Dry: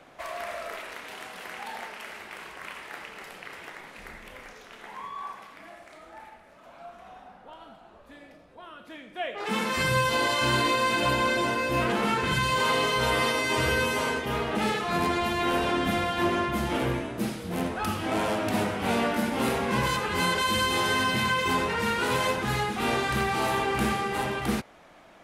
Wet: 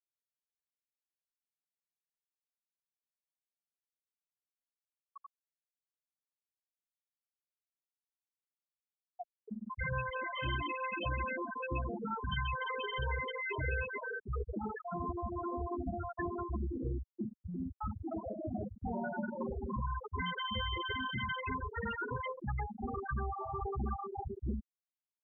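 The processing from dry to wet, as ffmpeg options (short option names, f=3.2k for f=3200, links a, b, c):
-filter_complex "[0:a]asettb=1/sr,asplit=3[a][b][c];[a]atrim=end=18.934[d];[b]atrim=start=18.93:end=19.52,asetpts=PTS-STARTPTS,afade=t=in:d=0.004:c=qsin,afade=t=out:st=0.586:d=0.004:c=qsin,aecho=1:1:5.5:0.85,atrim=end_sample=26019[e];[c]atrim=start=19.516[f];[d][e]acrossfade=d=0.004:c1=hsin:c2=qsin[g];[g][f]acrossfade=d=0.004:c1=qsin:c2=hsin,asplit=2[h][i];[h]atrim=end=7.59,asetpts=PTS-STARTPTS,afade=t=out:st=7.586:d=0.004:c=hsin[j];[i]atrim=start=7.59,asetpts=PTS-STARTPTS,afade=t=in:d=2.66[k];[j][k]concat=n=2:v=0:a=1,equalizer=f=62:w=3.1:g=14.5,afftfilt=real='re*gte(hypot(re,im),0.224)':imag='im*gte(hypot(re,im),0.224)':win_size=1024:overlap=0.75,acrossover=split=94|300|1900[l][m][n][o];[l]acompressor=threshold=-40dB:ratio=4[p];[m]acompressor=threshold=-44dB:ratio=4[q];[n]acompressor=threshold=-42dB:ratio=4[r];[o]acompressor=threshold=-41dB:ratio=4[s];[p][q][r][s]amix=inputs=4:normalize=0"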